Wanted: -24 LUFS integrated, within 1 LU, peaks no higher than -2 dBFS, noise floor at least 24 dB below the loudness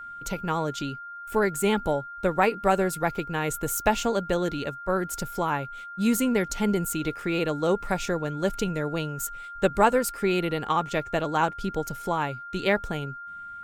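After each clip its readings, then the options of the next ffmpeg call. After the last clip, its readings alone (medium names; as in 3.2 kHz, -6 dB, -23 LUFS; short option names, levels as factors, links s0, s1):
steady tone 1.4 kHz; tone level -37 dBFS; loudness -27.0 LUFS; peak level -7.0 dBFS; loudness target -24.0 LUFS
-> -af "bandreject=f=1400:w=30"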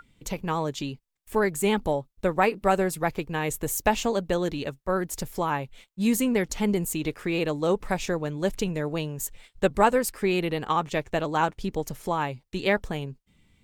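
steady tone not found; loudness -27.0 LUFS; peak level -7.0 dBFS; loudness target -24.0 LUFS
-> -af "volume=1.41"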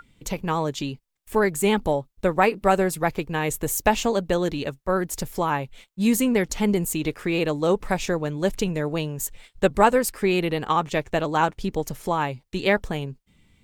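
loudness -24.0 LUFS; peak level -4.5 dBFS; noise floor -67 dBFS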